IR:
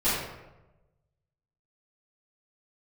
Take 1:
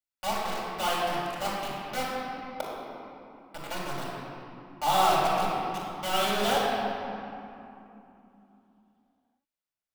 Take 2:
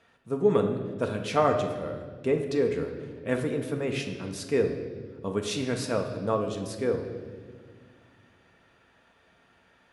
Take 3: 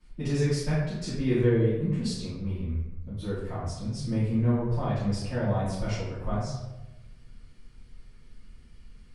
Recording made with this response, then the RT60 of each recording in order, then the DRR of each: 3; 2.9, 1.7, 1.0 s; -7.0, 3.0, -17.0 dB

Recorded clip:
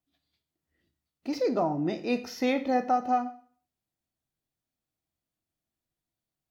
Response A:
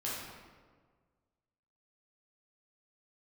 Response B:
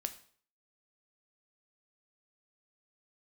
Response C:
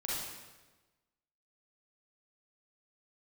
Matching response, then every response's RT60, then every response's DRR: B; 1.6, 0.50, 1.2 s; -7.5, 8.0, -7.0 dB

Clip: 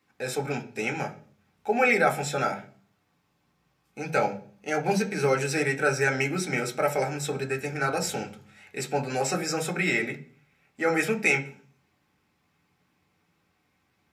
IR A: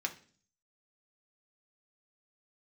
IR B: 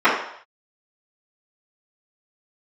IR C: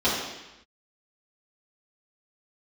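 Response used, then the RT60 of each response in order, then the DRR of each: A; 0.45 s, not exponential, 0.95 s; 2.0, -15.0, -11.0 dB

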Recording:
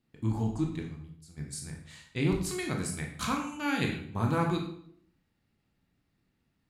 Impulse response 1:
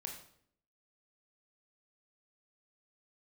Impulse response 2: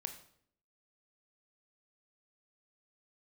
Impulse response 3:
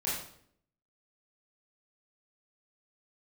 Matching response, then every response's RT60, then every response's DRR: 1; 0.65, 0.65, 0.65 s; 1.0, 6.5, -8.5 dB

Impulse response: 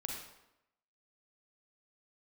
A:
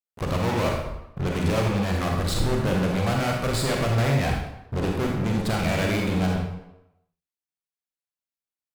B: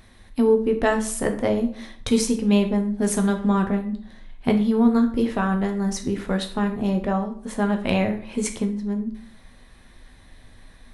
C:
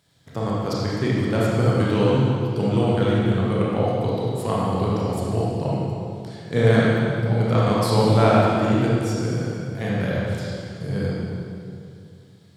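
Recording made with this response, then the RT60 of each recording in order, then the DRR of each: A; 0.90, 0.50, 2.4 s; 0.0, 4.5, -6.5 dB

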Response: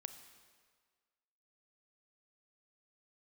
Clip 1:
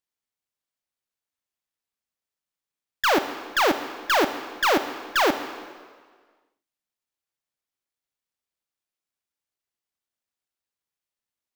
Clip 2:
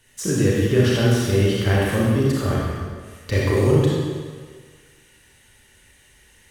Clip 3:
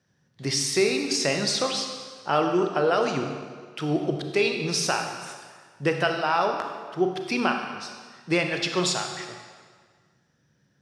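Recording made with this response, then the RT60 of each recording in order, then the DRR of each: 1; 1.7, 1.7, 1.7 s; 9.0, -6.0, 4.0 dB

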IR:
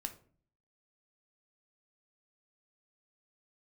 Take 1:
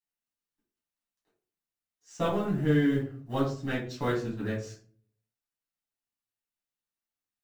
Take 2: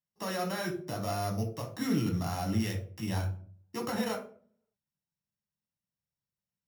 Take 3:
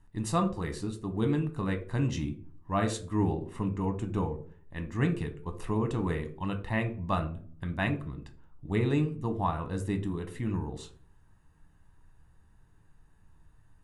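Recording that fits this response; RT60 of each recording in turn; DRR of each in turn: 3; 0.45, 0.45, 0.45 s; -8.5, 1.0, 6.0 dB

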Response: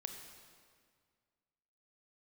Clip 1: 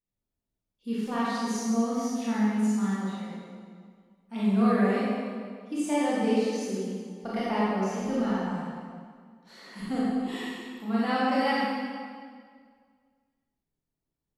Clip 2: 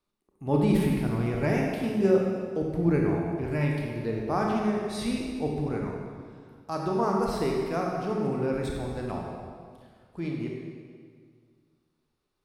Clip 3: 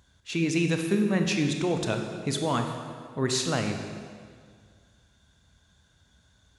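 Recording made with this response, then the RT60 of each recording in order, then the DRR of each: 3; 1.9, 1.9, 1.9 s; -9.0, -1.0, 4.5 dB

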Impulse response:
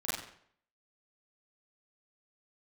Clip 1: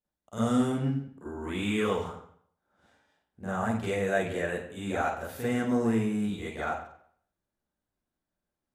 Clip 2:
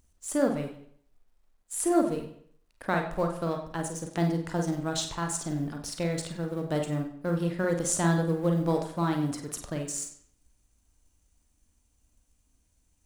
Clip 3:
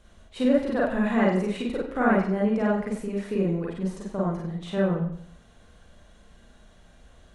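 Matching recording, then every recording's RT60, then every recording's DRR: 1; 0.65, 0.60, 0.65 s; -10.5, 3.0, -5.0 dB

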